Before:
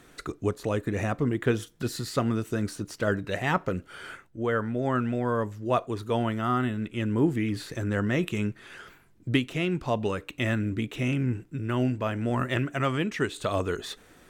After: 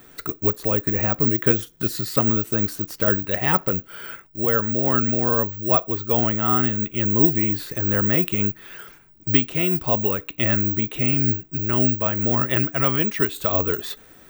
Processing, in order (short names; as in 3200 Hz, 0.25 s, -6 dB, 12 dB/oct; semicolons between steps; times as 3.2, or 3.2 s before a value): careless resampling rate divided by 2×, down none, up zero stuff; gain +3.5 dB